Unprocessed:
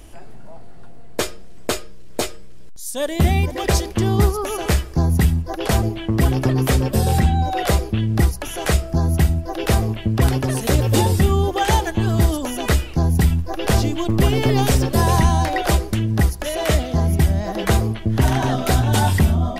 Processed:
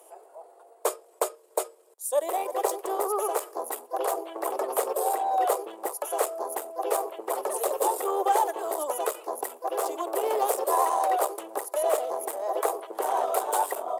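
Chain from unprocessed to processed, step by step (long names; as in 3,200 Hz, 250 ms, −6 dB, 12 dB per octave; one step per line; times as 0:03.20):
dynamic equaliser 1,200 Hz, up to +4 dB, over −41 dBFS, Q 2.2
asymmetric clip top −17 dBFS, bottom −8.5 dBFS
tempo change 1.4×
Butterworth high-pass 410 Hz 48 dB per octave
flat-topped bell 3,000 Hz −14.5 dB 2.4 octaves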